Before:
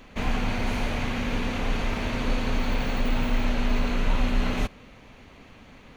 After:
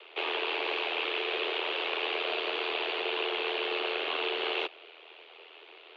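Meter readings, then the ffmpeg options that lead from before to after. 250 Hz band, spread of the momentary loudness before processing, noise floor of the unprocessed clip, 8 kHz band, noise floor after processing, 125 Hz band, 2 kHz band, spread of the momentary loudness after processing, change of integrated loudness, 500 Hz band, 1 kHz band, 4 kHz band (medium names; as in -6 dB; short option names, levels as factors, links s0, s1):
-14.5 dB, 2 LU, -50 dBFS, under -20 dB, -53 dBFS, under -40 dB, +1.0 dB, 20 LU, -2.5 dB, +1.0 dB, -2.0 dB, +5.5 dB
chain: -af "aeval=exprs='val(0)*sin(2*PI*41*n/s)':c=same,highpass=f=220:t=q:w=0.5412,highpass=f=220:t=q:w=1.307,lowpass=f=3400:t=q:w=0.5176,lowpass=f=3400:t=q:w=0.7071,lowpass=f=3400:t=q:w=1.932,afreqshift=160,aexciter=amount=4.6:drive=1.8:freq=2600"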